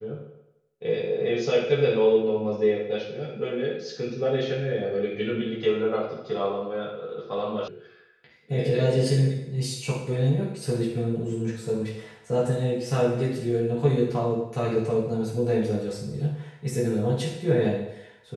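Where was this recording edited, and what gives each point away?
0:07.68: cut off before it has died away

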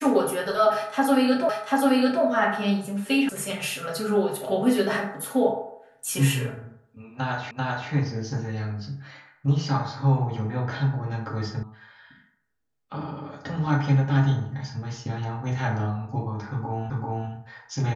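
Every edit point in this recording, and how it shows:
0:01.49: the same again, the last 0.74 s
0:03.29: cut off before it has died away
0:07.51: the same again, the last 0.39 s
0:11.63: cut off before it has died away
0:16.90: the same again, the last 0.39 s

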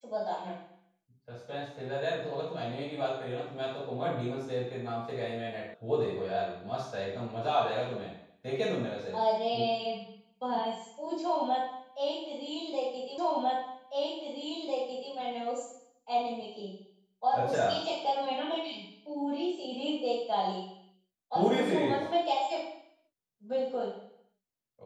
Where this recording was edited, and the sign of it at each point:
0:05.74: cut off before it has died away
0:13.18: the same again, the last 1.95 s

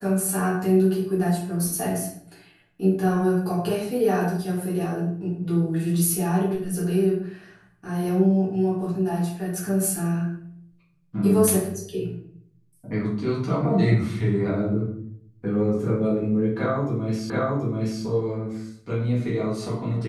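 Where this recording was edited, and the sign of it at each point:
0:17.30: the same again, the last 0.73 s

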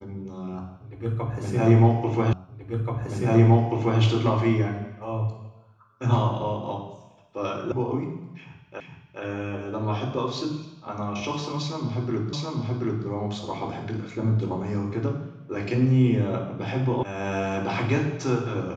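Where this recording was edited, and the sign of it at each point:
0:02.33: the same again, the last 1.68 s
0:07.72: cut off before it has died away
0:08.80: the same again, the last 0.42 s
0:12.33: the same again, the last 0.73 s
0:17.03: cut off before it has died away

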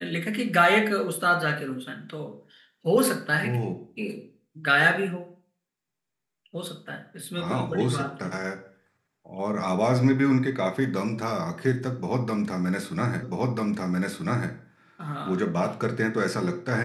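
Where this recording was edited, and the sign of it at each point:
0:13.23: the same again, the last 1.29 s

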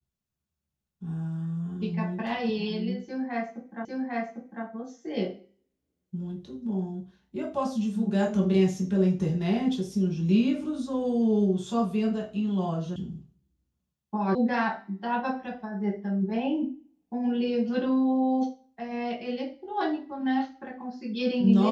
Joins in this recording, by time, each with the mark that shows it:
0:03.85: the same again, the last 0.8 s
0:12.96: cut off before it has died away
0:14.35: cut off before it has died away

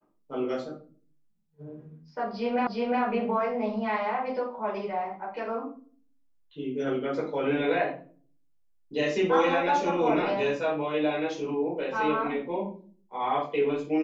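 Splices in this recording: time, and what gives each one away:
0:02.67: the same again, the last 0.36 s

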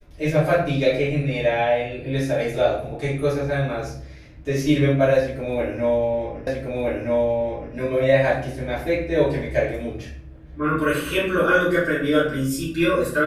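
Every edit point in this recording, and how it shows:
0:06.47: the same again, the last 1.27 s

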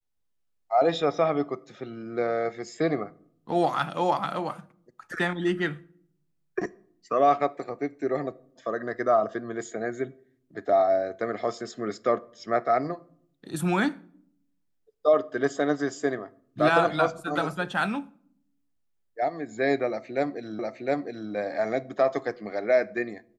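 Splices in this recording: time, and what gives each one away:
0:20.59: the same again, the last 0.71 s

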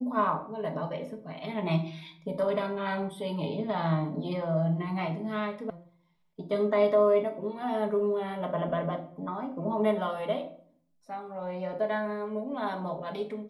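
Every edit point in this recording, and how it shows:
0:05.70: cut off before it has died away

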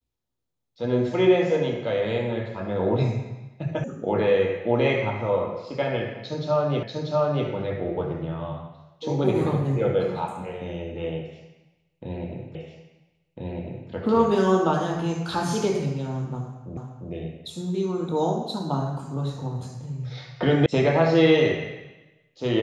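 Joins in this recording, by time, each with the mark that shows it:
0:03.84: cut off before it has died away
0:06.83: the same again, the last 0.64 s
0:12.55: the same again, the last 1.35 s
0:16.77: the same again, the last 0.35 s
0:20.66: cut off before it has died away

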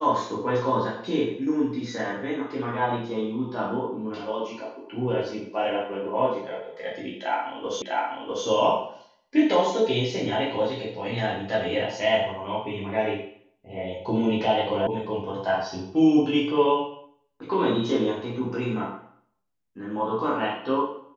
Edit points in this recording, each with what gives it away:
0:07.82: the same again, the last 0.65 s
0:14.87: cut off before it has died away

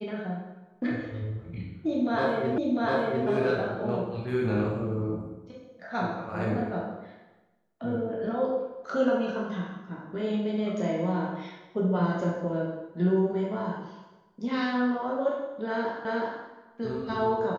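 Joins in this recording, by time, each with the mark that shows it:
0:02.58: the same again, the last 0.7 s
0:16.05: the same again, the last 0.37 s

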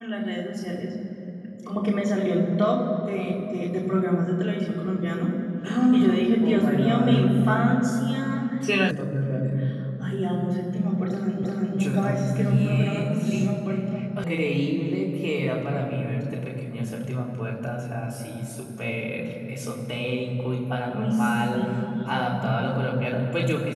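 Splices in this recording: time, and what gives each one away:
0:08.91: cut off before it has died away
0:11.44: the same again, the last 0.35 s
0:14.24: cut off before it has died away

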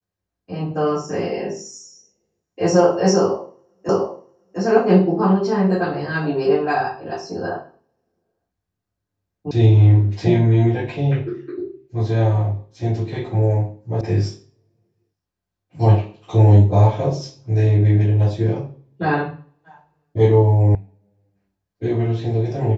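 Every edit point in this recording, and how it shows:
0:03.89: the same again, the last 0.7 s
0:09.51: cut off before it has died away
0:14.01: cut off before it has died away
0:20.75: cut off before it has died away

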